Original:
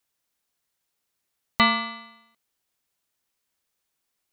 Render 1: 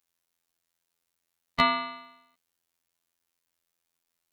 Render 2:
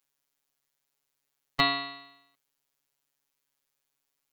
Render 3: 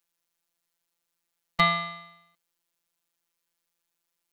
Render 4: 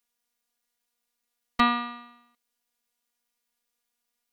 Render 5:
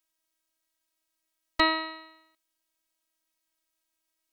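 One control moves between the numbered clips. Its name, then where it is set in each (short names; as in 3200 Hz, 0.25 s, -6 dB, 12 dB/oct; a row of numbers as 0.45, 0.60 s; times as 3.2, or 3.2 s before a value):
robotiser, frequency: 85, 140, 170, 240, 320 Hz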